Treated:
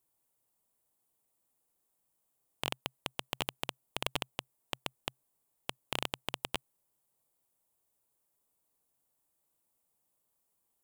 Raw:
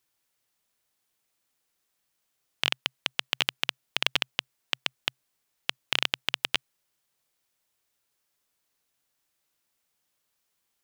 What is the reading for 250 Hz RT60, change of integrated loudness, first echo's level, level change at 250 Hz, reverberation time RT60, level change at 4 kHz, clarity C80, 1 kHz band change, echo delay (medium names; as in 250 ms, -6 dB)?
no reverb, -10.0 dB, no echo, 0.0 dB, no reverb, -11.5 dB, no reverb, -2.5 dB, no echo